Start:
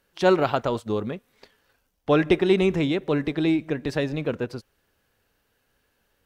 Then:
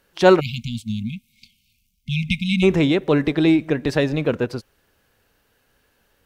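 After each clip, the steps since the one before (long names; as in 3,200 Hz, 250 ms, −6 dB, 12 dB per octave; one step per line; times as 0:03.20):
time-frequency box erased 0:00.40–0:02.63, 250–2,100 Hz
level +6 dB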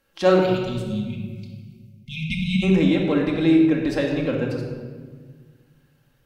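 rectangular room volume 1,700 cubic metres, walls mixed, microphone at 2.2 metres
level −7 dB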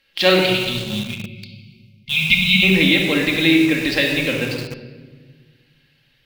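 flat-topped bell 3,000 Hz +15.5 dB
in parallel at −8 dB: bit reduction 4 bits
on the sum: level −2.5 dB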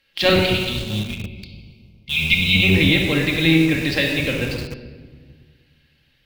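sub-octave generator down 1 octave, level −1 dB
level −2 dB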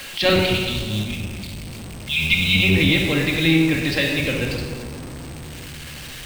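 converter with a step at zero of −27.5 dBFS
steady tone 8,200 Hz −48 dBFS
level −2 dB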